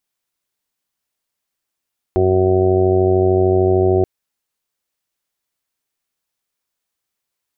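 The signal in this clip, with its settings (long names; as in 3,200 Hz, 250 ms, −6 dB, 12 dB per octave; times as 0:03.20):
steady harmonic partials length 1.88 s, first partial 93.3 Hz, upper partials −9/−10/5/−7.5/−10.5/−5/−7 dB, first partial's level −18 dB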